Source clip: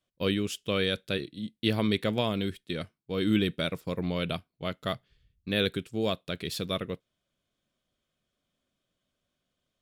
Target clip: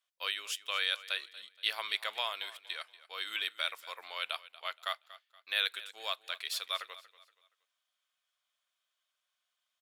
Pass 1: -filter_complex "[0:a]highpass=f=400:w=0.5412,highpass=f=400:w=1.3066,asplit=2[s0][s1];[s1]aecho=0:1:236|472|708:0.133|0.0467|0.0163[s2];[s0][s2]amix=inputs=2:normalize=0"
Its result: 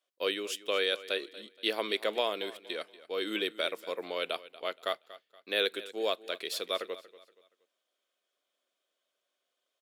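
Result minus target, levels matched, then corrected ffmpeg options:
500 Hz band +14.0 dB
-filter_complex "[0:a]highpass=f=880:w=0.5412,highpass=f=880:w=1.3066,asplit=2[s0][s1];[s1]aecho=0:1:236|472|708:0.133|0.0467|0.0163[s2];[s0][s2]amix=inputs=2:normalize=0"

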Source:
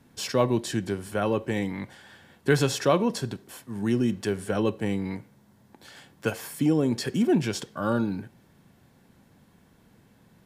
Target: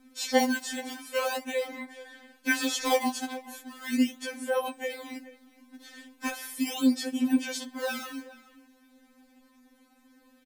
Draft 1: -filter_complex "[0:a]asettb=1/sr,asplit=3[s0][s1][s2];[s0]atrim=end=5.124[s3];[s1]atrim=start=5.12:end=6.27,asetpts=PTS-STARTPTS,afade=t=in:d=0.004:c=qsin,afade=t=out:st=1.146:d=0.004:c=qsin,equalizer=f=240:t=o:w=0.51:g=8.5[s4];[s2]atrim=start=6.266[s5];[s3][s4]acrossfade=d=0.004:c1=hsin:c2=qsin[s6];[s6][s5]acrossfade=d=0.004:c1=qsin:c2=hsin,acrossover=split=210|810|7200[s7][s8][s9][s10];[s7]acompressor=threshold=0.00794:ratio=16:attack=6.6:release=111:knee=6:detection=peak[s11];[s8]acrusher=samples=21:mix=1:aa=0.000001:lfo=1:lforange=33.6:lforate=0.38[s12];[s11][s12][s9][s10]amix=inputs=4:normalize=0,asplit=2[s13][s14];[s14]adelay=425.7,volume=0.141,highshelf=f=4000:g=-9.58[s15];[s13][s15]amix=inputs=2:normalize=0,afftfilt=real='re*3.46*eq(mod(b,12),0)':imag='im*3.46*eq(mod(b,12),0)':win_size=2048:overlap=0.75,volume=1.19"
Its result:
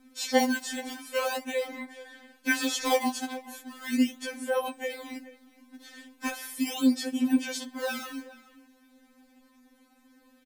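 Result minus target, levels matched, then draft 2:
compression: peak gain reduction -6 dB
-filter_complex "[0:a]asettb=1/sr,asplit=3[s0][s1][s2];[s0]atrim=end=5.124[s3];[s1]atrim=start=5.12:end=6.27,asetpts=PTS-STARTPTS,afade=t=in:d=0.004:c=qsin,afade=t=out:st=1.146:d=0.004:c=qsin,equalizer=f=240:t=o:w=0.51:g=8.5[s4];[s2]atrim=start=6.266[s5];[s3][s4]acrossfade=d=0.004:c1=hsin:c2=qsin[s6];[s6][s5]acrossfade=d=0.004:c1=qsin:c2=hsin,acrossover=split=210|810|7200[s7][s8][s9][s10];[s7]acompressor=threshold=0.00376:ratio=16:attack=6.6:release=111:knee=6:detection=peak[s11];[s8]acrusher=samples=21:mix=1:aa=0.000001:lfo=1:lforange=33.6:lforate=0.38[s12];[s11][s12][s9][s10]amix=inputs=4:normalize=0,asplit=2[s13][s14];[s14]adelay=425.7,volume=0.141,highshelf=f=4000:g=-9.58[s15];[s13][s15]amix=inputs=2:normalize=0,afftfilt=real='re*3.46*eq(mod(b,12),0)':imag='im*3.46*eq(mod(b,12),0)':win_size=2048:overlap=0.75,volume=1.19"

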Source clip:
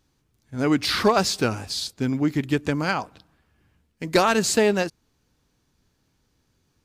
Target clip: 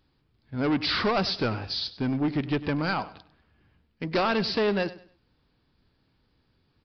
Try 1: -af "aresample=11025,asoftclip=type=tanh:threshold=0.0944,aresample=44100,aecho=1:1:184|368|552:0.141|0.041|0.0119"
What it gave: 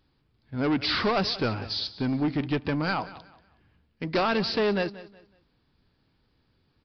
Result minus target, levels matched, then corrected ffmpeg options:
echo 85 ms late
-af "aresample=11025,asoftclip=type=tanh:threshold=0.0944,aresample=44100,aecho=1:1:99|198|297:0.141|0.041|0.0119"

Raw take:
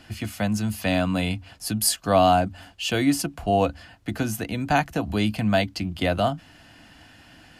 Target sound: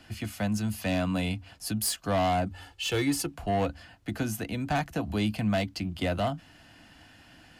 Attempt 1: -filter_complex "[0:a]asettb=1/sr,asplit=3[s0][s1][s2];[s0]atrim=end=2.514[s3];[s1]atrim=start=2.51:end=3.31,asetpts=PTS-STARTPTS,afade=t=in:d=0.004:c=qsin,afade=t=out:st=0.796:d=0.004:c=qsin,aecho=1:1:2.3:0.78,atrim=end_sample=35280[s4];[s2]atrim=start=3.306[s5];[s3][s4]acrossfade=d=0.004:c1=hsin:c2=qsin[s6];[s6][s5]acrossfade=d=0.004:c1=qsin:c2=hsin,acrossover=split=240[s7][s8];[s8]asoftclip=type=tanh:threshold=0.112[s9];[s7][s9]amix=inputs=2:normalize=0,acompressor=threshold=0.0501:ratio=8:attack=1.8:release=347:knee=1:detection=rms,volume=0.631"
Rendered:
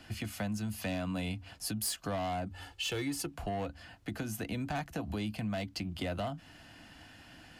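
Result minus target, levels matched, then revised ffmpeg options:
compression: peak gain reduction +10 dB
-filter_complex "[0:a]asettb=1/sr,asplit=3[s0][s1][s2];[s0]atrim=end=2.514[s3];[s1]atrim=start=2.51:end=3.31,asetpts=PTS-STARTPTS,afade=t=in:d=0.004:c=qsin,afade=t=out:st=0.796:d=0.004:c=qsin,aecho=1:1:2.3:0.78,atrim=end_sample=35280[s4];[s2]atrim=start=3.306[s5];[s3][s4]acrossfade=d=0.004:c1=hsin:c2=qsin[s6];[s6][s5]acrossfade=d=0.004:c1=qsin:c2=hsin,acrossover=split=240[s7][s8];[s8]asoftclip=type=tanh:threshold=0.112[s9];[s7][s9]amix=inputs=2:normalize=0,volume=0.631"

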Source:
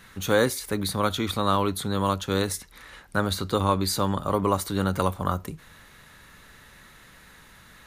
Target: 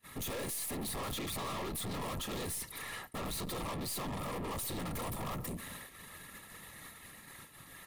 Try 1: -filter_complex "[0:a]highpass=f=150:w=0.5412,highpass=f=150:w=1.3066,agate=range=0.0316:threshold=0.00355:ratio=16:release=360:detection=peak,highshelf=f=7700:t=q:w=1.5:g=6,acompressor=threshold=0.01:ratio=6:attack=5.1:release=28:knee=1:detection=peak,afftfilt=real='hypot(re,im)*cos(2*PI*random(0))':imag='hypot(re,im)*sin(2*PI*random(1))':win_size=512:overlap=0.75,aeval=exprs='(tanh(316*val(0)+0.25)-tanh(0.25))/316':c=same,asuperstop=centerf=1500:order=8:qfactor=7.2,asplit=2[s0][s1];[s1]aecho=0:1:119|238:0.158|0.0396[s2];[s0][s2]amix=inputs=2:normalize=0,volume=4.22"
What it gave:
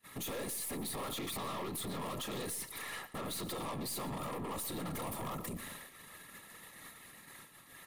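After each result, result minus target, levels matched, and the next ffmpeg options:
echo-to-direct +12 dB; compression: peak gain reduction +6.5 dB; 125 Hz band -2.5 dB
-filter_complex "[0:a]highpass=f=150:w=0.5412,highpass=f=150:w=1.3066,agate=range=0.0316:threshold=0.00355:ratio=16:release=360:detection=peak,highshelf=f=7700:t=q:w=1.5:g=6,acompressor=threshold=0.01:ratio=6:attack=5.1:release=28:knee=1:detection=peak,afftfilt=real='hypot(re,im)*cos(2*PI*random(0))':imag='hypot(re,im)*sin(2*PI*random(1))':win_size=512:overlap=0.75,aeval=exprs='(tanh(316*val(0)+0.25)-tanh(0.25))/316':c=same,asuperstop=centerf=1500:order=8:qfactor=7.2,asplit=2[s0][s1];[s1]aecho=0:1:119:0.0398[s2];[s0][s2]amix=inputs=2:normalize=0,volume=4.22"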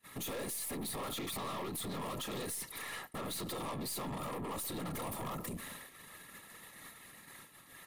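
compression: peak gain reduction +6.5 dB; 125 Hz band -2.5 dB
-filter_complex "[0:a]highpass=f=150:w=0.5412,highpass=f=150:w=1.3066,agate=range=0.0316:threshold=0.00355:ratio=16:release=360:detection=peak,highshelf=f=7700:t=q:w=1.5:g=6,acompressor=threshold=0.0251:ratio=6:attack=5.1:release=28:knee=1:detection=peak,afftfilt=real='hypot(re,im)*cos(2*PI*random(0))':imag='hypot(re,im)*sin(2*PI*random(1))':win_size=512:overlap=0.75,aeval=exprs='(tanh(316*val(0)+0.25)-tanh(0.25))/316':c=same,asuperstop=centerf=1500:order=8:qfactor=7.2,asplit=2[s0][s1];[s1]aecho=0:1:119:0.0398[s2];[s0][s2]amix=inputs=2:normalize=0,volume=4.22"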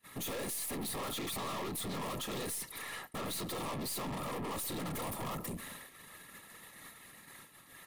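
125 Hz band -2.5 dB
-filter_complex "[0:a]highpass=f=72:w=0.5412,highpass=f=72:w=1.3066,agate=range=0.0316:threshold=0.00355:ratio=16:release=360:detection=peak,highshelf=f=7700:t=q:w=1.5:g=6,acompressor=threshold=0.0251:ratio=6:attack=5.1:release=28:knee=1:detection=peak,afftfilt=real='hypot(re,im)*cos(2*PI*random(0))':imag='hypot(re,im)*sin(2*PI*random(1))':win_size=512:overlap=0.75,aeval=exprs='(tanh(316*val(0)+0.25)-tanh(0.25))/316':c=same,asuperstop=centerf=1500:order=8:qfactor=7.2,asplit=2[s0][s1];[s1]aecho=0:1:119:0.0398[s2];[s0][s2]amix=inputs=2:normalize=0,volume=4.22"

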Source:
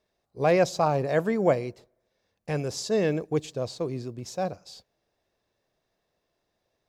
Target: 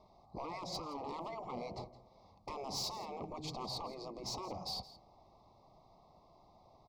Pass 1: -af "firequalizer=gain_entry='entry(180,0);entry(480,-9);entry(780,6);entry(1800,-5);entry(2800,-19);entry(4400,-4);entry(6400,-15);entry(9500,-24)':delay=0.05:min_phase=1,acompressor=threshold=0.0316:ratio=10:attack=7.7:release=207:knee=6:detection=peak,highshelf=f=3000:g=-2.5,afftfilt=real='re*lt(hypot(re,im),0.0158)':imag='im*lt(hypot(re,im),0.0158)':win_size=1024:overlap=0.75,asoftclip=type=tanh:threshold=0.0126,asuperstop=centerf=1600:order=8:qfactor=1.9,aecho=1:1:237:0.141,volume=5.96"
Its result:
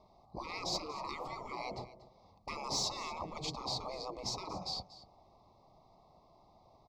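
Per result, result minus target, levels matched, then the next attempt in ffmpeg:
compression: peak gain reduction -9.5 dB; saturation: distortion -14 dB; echo 70 ms late
-af "firequalizer=gain_entry='entry(180,0);entry(480,-9);entry(780,6);entry(1800,-5);entry(2800,-19);entry(4400,-4);entry(6400,-15);entry(9500,-24)':delay=0.05:min_phase=1,acompressor=threshold=0.00944:ratio=10:attack=7.7:release=207:knee=6:detection=peak,highshelf=f=3000:g=-2.5,afftfilt=real='re*lt(hypot(re,im),0.0158)':imag='im*lt(hypot(re,im),0.0158)':win_size=1024:overlap=0.75,asoftclip=type=tanh:threshold=0.0126,asuperstop=centerf=1600:order=8:qfactor=1.9,aecho=1:1:237:0.141,volume=5.96"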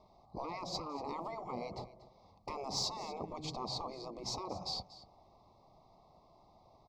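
saturation: distortion -16 dB; echo 70 ms late
-af "firequalizer=gain_entry='entry(180,0);entry(480,-9);entry(780,6);entry(1800,-5);entry(2800,-19);entry(4400,-4);entry(6400,-15);entry(9500,-24)':delay=0.05:min_phase=1,acompressor=threshold=0.00944:ratio=10:attack=7.7:release=207:knee=6:detection=peak,highshelf=f=3000:g=-2.5,afftfilt=real='re*lt(hypot(re,im),0.0158)':imag='im*lt(hypot(re,im),0.0158)':win_size=1024:overlap=0.75,asoftclip=type=tanh:threshold=0.00335,asuperstop=centerf=1600:order=8:qfactor=1.9,aecho=1:1:237:0.141,volume=5.96"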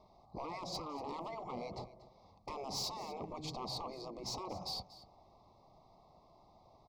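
echo 70 ms late
-af "firequalizer=gain_entry='entry(180,0);entry(480,-9);entry(780,6);entry(1800,-5);entry(2800,-19);entry(4400,-4);entry(6400,-15);entry(9500,-24)':delay=0.05:min_phase=1,acompressor=threshold=0.00944:ratio=10:attack=7.7:release=207:knee=6:detection=peak,highshelf=f=3000:g=-2.5,afftfilt=real='re*lt(hypot(re,im),0.0158)':imag='im*lt(hypot(re,im),0.0158)':win_size=1024:overlap=0.75,asoftclip=type=tanh:threshold=0.00335,asuperstop=centerf=1600:order=8:qfactor=1.9,aecho=1:1:167:0.141,volume=5.96"

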